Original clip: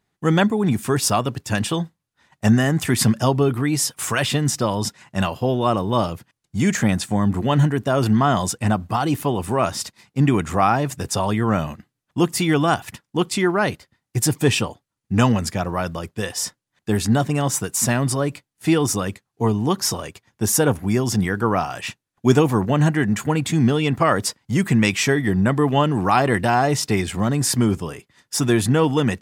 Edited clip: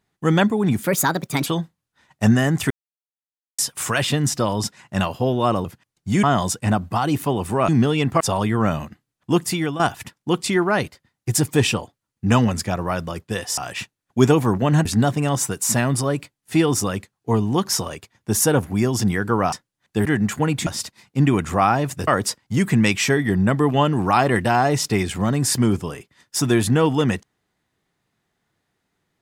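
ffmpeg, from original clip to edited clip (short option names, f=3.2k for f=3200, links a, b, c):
-filter_complex "[0:a]asplit=16[a][b][c][d][e][f][g][h][i][j][k][l][m][n][o][p];[a]atrim=end=0.834[q];[b]atrim=start=0.83:end=1.68,asetpts=PTS-STARTPTS,asetrate=59094,aresample=44100[r];[c]atrim=start=1.676:end=2.92,asetpts=PTS-STARTPTS,afade=t=out:st=1.24:d=0.004:c=hsin[s];[d]atrim=start=2.92:end=3.8,asetpts=PTS-STARTPTS,volume=0[t];[e]atrim=start=3.8:end=5.862,asetpts=PTS-STARTPTS,afade=t=in:d=0.004:c=hsin[u];[f]atrim=start=6.118:end=6.712[v];[g]atrim=start=8.218:end=9.672[w];[h]atrim=start=23.538:end=24.062[x];[i]atrim=start=11.078:end=12.67,asetpts=PTS-STARTPTS,afade=t=out:st=1.222:d=0.37:silence=0.251189[y];[j]atrim=start=12.67:end=16.452,asetpts=PTS-STARTPTS,afade=t=in:d=0.004:c=hsin:silence=0.251189[z];[k]atrim=start=21.648:end=22.932[aa];[l]atrim=start=16.978:end=21.652[ab];[m]atrim=start=16.448:end=16.982[ac];[n]atrim=start=22.928:end=23.542[ad];[o]atrim=start=9.668:end=11.082[ae];[p]atrim=start=24.058[af];[q][r]acrossfade=d=0.004:c1=hsin:c2=hsin[ag];[s][t][u]concat=n=3:v=0:a=1[ah];[ag][ah]acrossfade=d=0.004:c1=hsin:c2=hsin[ai];[ai][v]acrossfade=d=0.004:c1=hsin:c2=hsin[aj];[aj][w]acrossfade=d=0.004:c1=hsin:c2=hsin[ak];[ak][x]acrossfade=d=0.004:c1=hsin:c2=hsin[al];[y][z]concat=n=2:v=0:a=1[am];[al][am]acrossfade=d=0.004:c1=hsin:c2=hsin[an];[an][aa]acrossfade=d=0.004:c1=hsin:c2=hsin[ao];[ao][ab]acrossfade=d=0.004:c1=hsin:c2=hsin[ap];[ap][ac]acrossfade=d=0.004:c1=hsin:c2=hsin[aq];[aq][ad]acrossfade=d=0.004:c1=hsin:c2=hsin[ar];[ar][ae]acrossfade=d=0.004:c1=hsin:c2=hsin[as];[as][af]acrossfade=d=0.004:c1=hsin:c2=hsin"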